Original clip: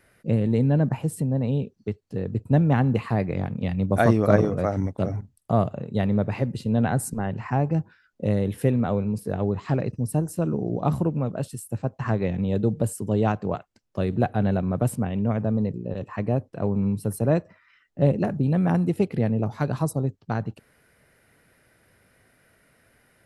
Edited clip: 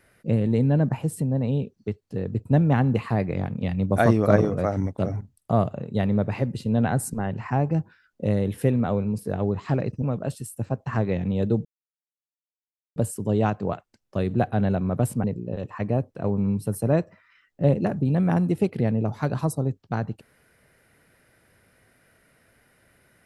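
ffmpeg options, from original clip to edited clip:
-filter_complex "[0:a]asplit=4[s0][s1][s2][s3];[s0]atrim=end=10.022[s4];[s1]atrim=start=11.148:end=12.78,asetpts=PTS-STARTPTS,afade=t=out:st=1.628:d=0.004:c=hsin,apad=pad_dur=1.31[s5];[s2]atrim=start=12.78:end=15.062,asetpts=PTS-STARTPTS,afade=t=in:d=0.004:c=hsin[s6];[s3]atrim=start=15.618[s7];[s5][s6]concat=n=2:v=0:a=1[s8];[s4][s8]acrossfade=d=0.004:c1=hsin:c2=hsin[s9];[s9][s7]acrossfade=d=0.004:c1=hsin:c2=hsin"

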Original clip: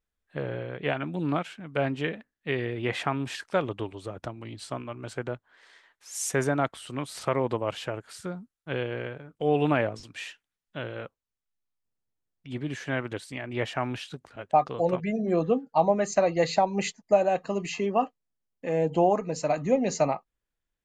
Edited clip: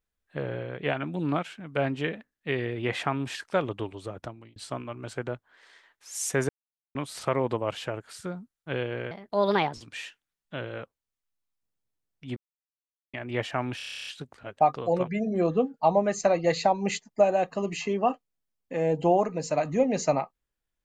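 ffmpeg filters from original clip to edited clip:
-filter_complex "[0:a]asplit=18[s0][s1][s2][s3][s4][s5][s6][s7][s8][s9][s10][s11][s12][s13][s14][s15][s16][s17];[s0]atrim=end=4.56,asetpts=PTS-STARTPTS,afade=t=out:st=4.04:d=0.52:c=qsin[s18];[s1]atrim=start=4.56:end=6.49,asetpts=PTS-STARTPTS,afade=t=in:d=0.004:c=hsin,afade=t=out:st=1.926:d=0.004:c=hsin[s19];[s2]atrim=start=6.49:end=6.95,asetpts=PTS-STARTPTS,volume=0[s20];[s3]atrim=start=6.95:end=9.114,asetpts=PTS-STARTPTS,afade=t=in:d=0.004:c=hsin[s21];[s4]atrim=start=9.11:end=9.96,asetpts=PTS-STARTPTS,asetrate=59976,aresample=44100,atrim=end_sample=27562,asetpts=PTS-STARTPTS[s22];[s5]atrim=start=9.956:end=12.59,asetpts=PTS-STARTPTS,afade=t=out:st=2.63:d=0.004:c=hsin[s23];[s6]atrim=start=12.59:end=13.36,asetpts=PTS-STARTPTS,volume=0[s24];[s7]atrim=start=13.36:end=14.022,asetpts=PTS-STARTPTS,afade=t=in:d=0.004:c=hsin[s25];[s8]atrim=start=13.988:end=14.022[s26];[s9]atrim=start=13.988:end=14.022[s27];[s10]atrim=start=13.988:end=14.022[s28];[s11]atrim=start=13.988:end=14.022[s29];[s12]atrim=start=13.988:end=14.022[s30];[s13]atrim=start=13.988:end=14.022[s31];[s14]atrim=start=13.988:end=14.022[s32];[s15]atrim=start=13.988:end=14.022[s33];[s16]atrim=start=13.988:end=14.022[s34];[s17]atrim=start=13.988[s35];[s18][s19][s20][s21]concat=n=4:v=0:a=1[s36];[s36][s22]acrossfade=d=0.004:c1=hsin:c2=hsin[s37];[s23][s24][s25]concat=n=3:v=0:a=1[s38];[s37][s38]acrossfade=d=0.004:c1=hsin:c2=hsin[s39];[s39][s26]acrossfade=d=0.004:c1=hsin:c2=hsin[s40];[s40][s27]acrossfade=d=0.004:c1=hsin:c2=hsin[s41];[s41][s28]acrossfade=d=0.004:c1=hsin:c2=hsin[s42];[s42][s29]acrossfade=d=0.004:c1=hsin:c2=hsin[s43];[s43][s30]acrossfade=d=0.004:c1=hsin:c2=hsin[s44];[s44][s31]acrossfade=d=0.004:c1=hsin:c2=hsin[s45];[s45][s32]acrossfade=d=0.004:c1=hsin:c2=hsin[s46];[s46][s33]acrossfade=d=0.004:c1=hsin:c2=hsin[s47];[s47][s34]acrossfade=d=0.004:c1=hsin:c2=hsin[s48];[s48][s35]acrossfade=d=0.004:c1=hsin:c2=hsin"

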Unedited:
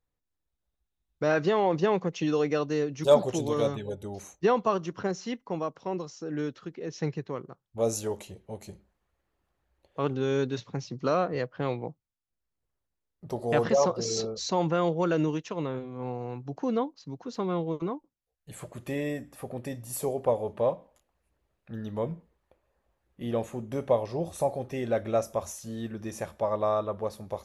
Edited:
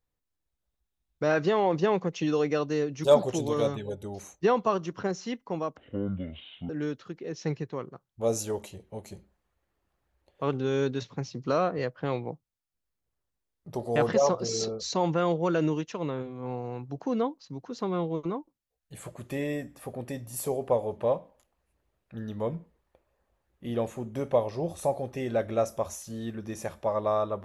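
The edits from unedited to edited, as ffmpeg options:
-filter_complex "[0:a]asplit=3[s0][s1][s2];[s0]atrim=end=5.774[s3];[s1]atrim=start=5.77:end=6.26,asetpts=PTS-STARTPTS,asetrate=23373,aresample=44100[s4];[s2]atrim=start=6.256[s5];[s3][s4]acrossfade=d=0.004:c1=hsin:c2=hsin[s6];[s6][s5]acrossfade=d=0.004:c1=hsin:c2=hsin"

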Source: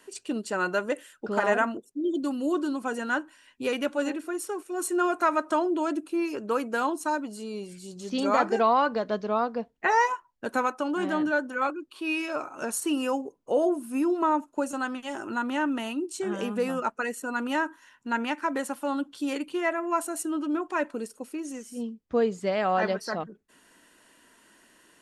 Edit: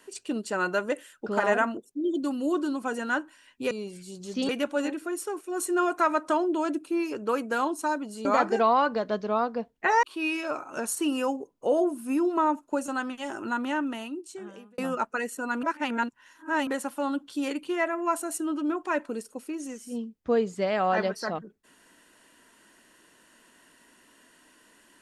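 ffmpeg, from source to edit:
-filter_complex "[0:a]asplit=8[s0][s1][s2][s3][s4][s5][s6][s7];[s0]atrim=end=3.712[s8];[s1]atrim=start=7.468:end=8.252[s9];[s2]atrim=start=3.708:end=7.472[s10];[s3]atrim=start=8.248:end=10.032[s11];[s4]atrim=start=11.878:end=16.63,asetpts=PTS-STARTPTS,afade=t=out:st=3.552:d=1.2[s12];[s5]atrim=start=16.63:end=17.482,asetpts=PTS-STARTPTS,afade=t=in:d=0.004:c=hsin[s13];[s6]atrim=start=17.478:end=18.522,asetpts=PTS-STARTPTS,areverse[s14];[s7]atrim=start=18.518[s15];[s8][s9]acrossfade=d=0.004:c1=hsin:c2=hsin[s16];[s16][s10]acrossfade=d=0.004:c1=hsin:c2=hsin[s17];[s17][s11]acrossfade=d=0.004:c1=hsin:c2=hsin[s18];[s12][s13]concat=n=2:v=0:a=1[s19];[s18][s19]acrossfade=d=0.004:c1=hsin:c2=hsin[s20];[s20][s14]acrossfade=d=0.004:c1=hsin:c2=hsin[s21];[s21][s15]acrossfade=d=0.004:c1=hsin:c2=hsin"

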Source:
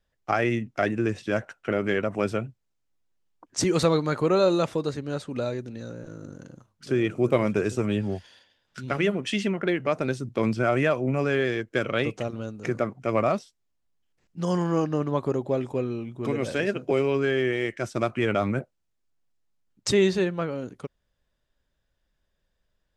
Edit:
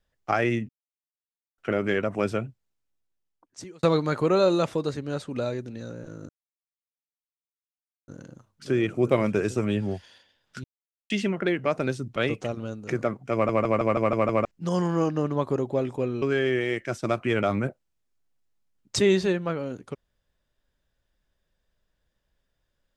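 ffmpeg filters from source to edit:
-filter_complex "[0:a]asplit=16[s0][s1][s2][s3][s4][s5][s6][s7][s8][s9][s10][s11][s12][s13][s14][s15];[s0]atrim=end=0.69,asetpts=PTS-STARTPTS,afade=t=out:st=0.686:d=0.004:c=hsin[s16];[s1]atrim=start=0.69:end=1.58,asetpts=PTS-STARTPTS,volume=0[s17];[s2]atrim=start=1.58:end=3.83,asetpts=PTS-STARTPTS,afade=t=in:d=0.004:c=hsin,afade=t=out:st=0.88:d=1.37[s18];[s3]atrim=start=3.83:end=6.29,asetpts=PTS-STARTPTS,afade=t=in:d=0.004:c=hsin,afade=t=out:st=2.456:d=0.004:c=hsin,apad=pad_dur=1.79[s19];[s4]atrim=start=6.29:end=8.85,asetpts=PTS-STARTPTS,afade=t=in:d=0.004:c=hsin,afade=t=out:st=2.556:d=0.004:c=hsin[s20];[s5]atrim=start=8.85:end=9.31,asetpts=PTS-STARTPTS,volume=0[s21];[s6]atrim=start=9.31:end=10.372,asetpts=PTS-STARTPTS,afade=t=in:d=0.004:c=hsin[s22];[s7]atrim=start=11.918:end=13.252[s23];[s8]atrim=start=13.088:end=13.252[s24];[s9]atrim=start=13.088:end=13.252[s25];[s10]atrim=start=13.088:end=13.252[s26];[s11]atrim=start=13.088:end=13.252[s27];[s12]atrim=start=13.088:end=13.252[s28];[s13]atrim=start=13.088:end=13.252[s29];[s14]atrim=start=14.208:end=15.982[s30];[s15]atrim=start=17.138[s31];[s16][s17][s18][s19][s20][s21][s22]concat=n=7:v=0:a=1[s32];[s32][s23]acrossfade=d=0.004:c1=hsin:c2=hsin[s33];[s33][s24]acrossfade=d=0.004:c1=hsin:c2=hsin[s34];[s34][s25]acrossfade=d=0.004:c1=hsin:c2=hsin[s35];[s35][s26]acrossfade=d=0.004:c1=hsin:c2=hsin[s36];[s36][s27]acrossfade=d=0.004:c1=hsin:c2=hsin[s37];[s37][s28]acrossfade=d=0.004:c1=hsin:c2=hsin[s38];[s38][s29]acrossfade=d=0.004:c1=hsin:c2=hsin[s39];[s39][s30]acrossfade=d=0.004:c1=hsin:c2=hsin[s40];[s40][s31]acrossfade=d=0.004:c1=hsin:c2=hsin"

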